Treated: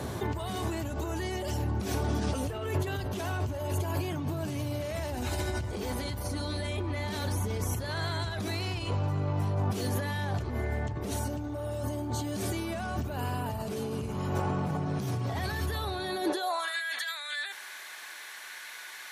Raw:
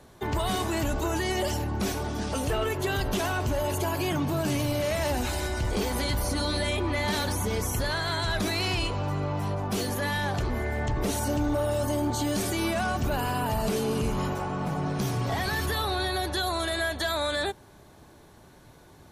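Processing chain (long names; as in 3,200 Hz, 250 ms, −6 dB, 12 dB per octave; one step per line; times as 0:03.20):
compressor whose output falls as the input rises −39 dBFS, ratio −1
parametric band 340 Hz +2.5 dB 2.5 octaves
high-pass filter sweep 84 Hz → 1,900 Hz, 0:15.89–0:16.80
level +3.5 dB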